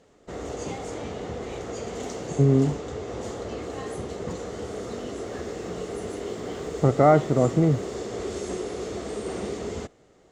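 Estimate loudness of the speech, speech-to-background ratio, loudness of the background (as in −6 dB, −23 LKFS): −21.5 LKFS, 12.5 dB, −34.0 LKFS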